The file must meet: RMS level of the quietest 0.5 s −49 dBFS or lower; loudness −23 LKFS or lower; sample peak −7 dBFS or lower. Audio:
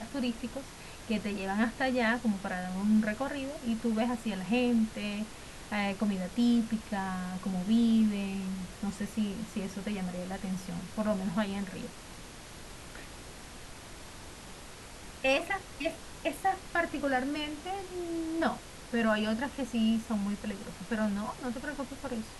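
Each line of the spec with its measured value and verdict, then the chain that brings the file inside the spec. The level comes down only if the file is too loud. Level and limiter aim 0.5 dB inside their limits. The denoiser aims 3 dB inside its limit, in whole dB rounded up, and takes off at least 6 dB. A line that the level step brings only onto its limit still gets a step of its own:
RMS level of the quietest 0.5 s −47 dBFS: out of spec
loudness −32.5 LKFS: in spec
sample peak −17.0 dBFS: in spec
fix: broadband denoise 6 dB, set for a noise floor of −47 dBFS

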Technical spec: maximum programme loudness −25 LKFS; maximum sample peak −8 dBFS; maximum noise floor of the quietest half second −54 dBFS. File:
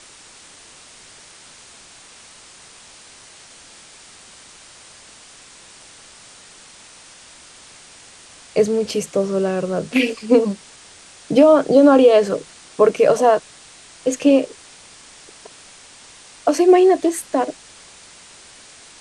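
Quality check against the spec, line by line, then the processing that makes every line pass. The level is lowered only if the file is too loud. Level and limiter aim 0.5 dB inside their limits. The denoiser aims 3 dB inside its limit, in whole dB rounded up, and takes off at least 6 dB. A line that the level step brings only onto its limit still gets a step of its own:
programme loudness −16.5 LKFS: out of spec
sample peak −2.5 dBFS: out of spec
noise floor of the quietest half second −44 dBFS: out of spec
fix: broadband denoise 6 dB, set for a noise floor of −44 dBFS
level −9 dB

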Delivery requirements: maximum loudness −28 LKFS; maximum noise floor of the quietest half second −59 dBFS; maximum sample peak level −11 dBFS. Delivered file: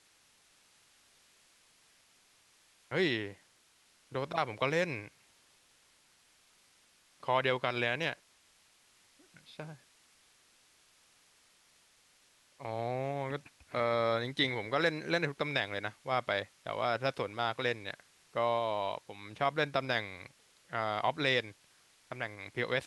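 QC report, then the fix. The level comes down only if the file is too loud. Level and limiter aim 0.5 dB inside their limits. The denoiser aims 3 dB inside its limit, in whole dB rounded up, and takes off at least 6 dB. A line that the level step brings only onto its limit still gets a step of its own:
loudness −33.5 LKFS: in spec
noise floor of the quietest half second −67 dBFS: in spec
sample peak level −14.5 dBFS: in spec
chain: no processing needed

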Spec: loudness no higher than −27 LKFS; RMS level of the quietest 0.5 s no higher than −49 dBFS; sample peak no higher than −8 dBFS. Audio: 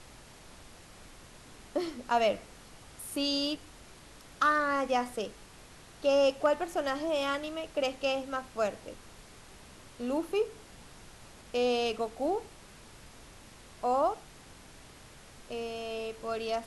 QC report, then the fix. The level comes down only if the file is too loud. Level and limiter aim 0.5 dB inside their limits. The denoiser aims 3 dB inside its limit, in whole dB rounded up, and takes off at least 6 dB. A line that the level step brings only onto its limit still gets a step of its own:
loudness −31.5 LKFS: in spec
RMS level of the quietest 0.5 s −52 dBFS: in spec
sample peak −14.5 dBFS: in spec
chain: no processing needed

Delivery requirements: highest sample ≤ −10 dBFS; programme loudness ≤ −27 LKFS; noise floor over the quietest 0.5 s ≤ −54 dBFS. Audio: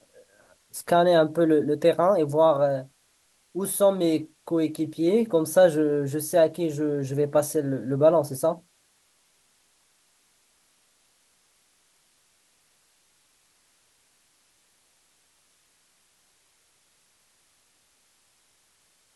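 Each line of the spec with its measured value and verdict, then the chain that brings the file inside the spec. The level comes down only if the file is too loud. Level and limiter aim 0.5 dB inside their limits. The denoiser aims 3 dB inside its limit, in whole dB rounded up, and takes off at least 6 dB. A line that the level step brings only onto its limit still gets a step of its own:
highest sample −7.5 dBFS: out of spec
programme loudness −23.0 LKFS: out of spec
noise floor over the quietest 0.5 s −65 dBFS: in spec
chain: level −4.5 dB

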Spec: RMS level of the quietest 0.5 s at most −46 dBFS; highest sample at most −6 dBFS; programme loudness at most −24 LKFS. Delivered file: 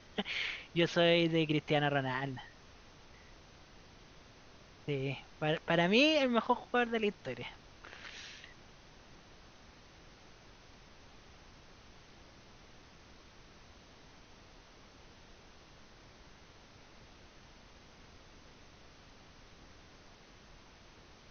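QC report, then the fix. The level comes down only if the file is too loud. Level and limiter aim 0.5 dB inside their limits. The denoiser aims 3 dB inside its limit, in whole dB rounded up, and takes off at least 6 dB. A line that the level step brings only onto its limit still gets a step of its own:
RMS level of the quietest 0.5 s −58 dBFS: in spec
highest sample −14.0 dBFS: in spec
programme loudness −32.5 LKFS: in spec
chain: no processing needed

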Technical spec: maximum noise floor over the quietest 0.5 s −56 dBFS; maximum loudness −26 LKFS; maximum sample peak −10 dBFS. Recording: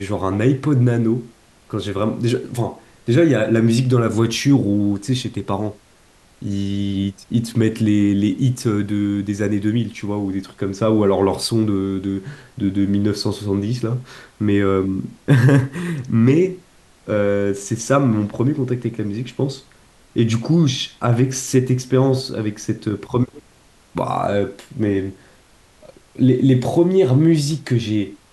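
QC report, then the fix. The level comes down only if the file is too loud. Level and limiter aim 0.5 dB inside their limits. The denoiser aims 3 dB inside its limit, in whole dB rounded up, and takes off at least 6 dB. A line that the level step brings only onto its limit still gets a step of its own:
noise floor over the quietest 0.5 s −52 dBFS: out of spec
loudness −19.0 LKFS: out of spec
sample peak −2.5 dBFS: out of spec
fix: level −7.5 dB
brickwall limiter −10.5 dBFS

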